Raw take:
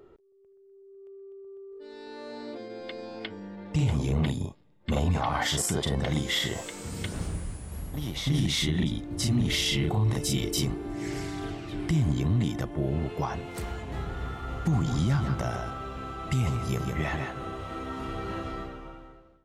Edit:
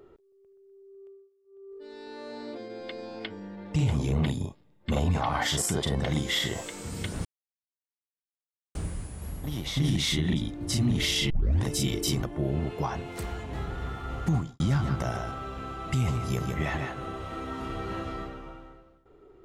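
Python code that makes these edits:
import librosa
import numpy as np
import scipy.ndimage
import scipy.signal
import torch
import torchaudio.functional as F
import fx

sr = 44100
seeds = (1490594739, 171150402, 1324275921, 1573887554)

y = fx.edit(x, sr, fx.fade_down_up(start_s=1.04, length_s=0.67, db=-22.5, fade_s=0.26),
    fx.insert_silence(at_s=7.25, length_s=1.5),
    fx.tape_start(start_s=9.8, length_s=0.34),
    fx.cut(start_s=10.73, length_s=1.89),
    fx.fade_out_span(start_s=14.74, length_s=0.25, curve='qua'), tone=tone)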